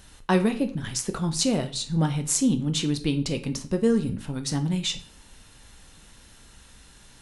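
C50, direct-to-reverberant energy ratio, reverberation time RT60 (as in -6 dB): 14.0 dB, 7.0 dB, 0.45 s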